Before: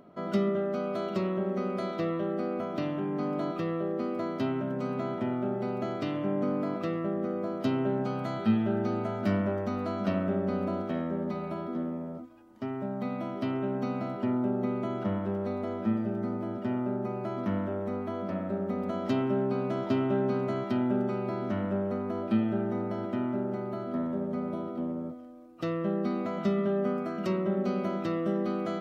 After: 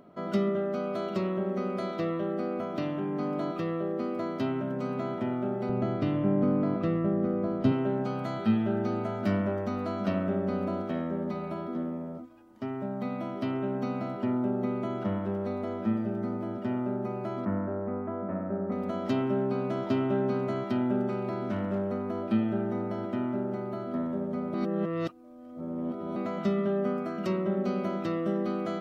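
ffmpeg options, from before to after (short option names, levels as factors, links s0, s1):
-filter_complex "[0:a]asettb=1/sr,asplit=3[s0][s1][s2];[s0]atrim=end=5.694[s3];[s1]atrim=start=5.69:end=7.72,asetpts=PTS-STARTPTS,afade=t=in:d=0.004:c=qsin,afade=t=out:st=2.026:d=0.004:c=qsin,aemphasis=mode=reproduction:type=bsi[s4];[s2]atrim=start=7.716[s5];[s3][s4]acrossfade=d=0.004:c1=hsin:c2=qsin[s6];[s6][s5]acrossfade=d=0.004:c1=qsin:c2=hsin,asettb=1/sr,asplit=3[s7][s8][s9];[s7]atrim=end=17.454[s10];[s8]atrim=start=17.45:end=18.72,asetpts=PTS-STARTPTS,afade=t=in:d=0.004:c=qsin,afade=t=out:st=1.266:d=0.004:c=qsin,lowpass=f=1800:w=0.5412,lowpass=f=1800:w=1.3066[s11];[s9]atrim=start=18.716[s12];[s10][s11]acrossfade=d=0.004:c1=hsin:c2=qsin[s13];[s13][s12]acrossfade=d=0.004:c1=qsin:c2=hsin,asettb=1/sr,asplit=3[s14][s15][s16];[s14]atrim=end=21.094[s17];[s15]atrim=start=21.09:end=21.9,asetpts=PTS-STARTPTS,afade=t=in:d=0.004:c=qsin,afade=t=out:st=0.806:d=0.004:c=qsin,asoftclip=type=hard:threshold=0.0596[s18];[s16]atrim=start=21.896[s19];[s17][s18]acrossfade=d=0.004:c1=hsin:c2=qsin[s20];[s20][s19]acrossfade=d=0.004:c1=qsin:c2=hsin,asplit=3[s21][s22][s23];[s21]atrim=end=24.542[s24];[s22]atrim=start=24.538:end=26.162,asetpts=PTS-STARTPTS,areverse[s25];[s23]atrim=start=26.158[s26];[s24][s25]acrossfade=d=0.004:c1=hsin:c2=hsin[s27];[s27][s26]acrossfade=d=0.004:c1=hsin:c2=hsin"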